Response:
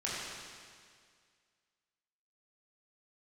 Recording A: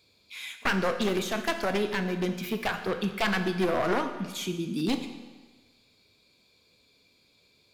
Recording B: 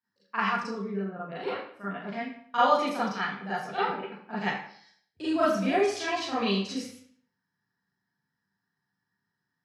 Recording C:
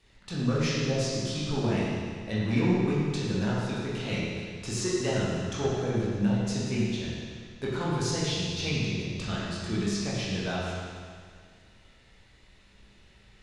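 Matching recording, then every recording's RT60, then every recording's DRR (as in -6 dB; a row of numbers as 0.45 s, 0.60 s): C; 1.3 s, 0.60 s, 2.0 s; 6.5 dB, -11.5 dB, -8.5 dB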